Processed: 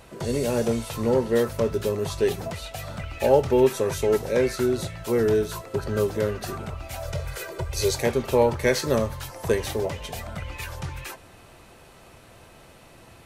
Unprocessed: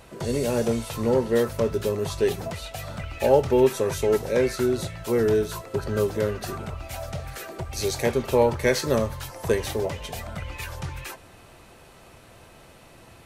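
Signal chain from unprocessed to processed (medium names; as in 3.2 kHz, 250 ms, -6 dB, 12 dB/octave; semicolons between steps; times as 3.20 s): 7.05–7.96 s: comb 2 ms, depth 86%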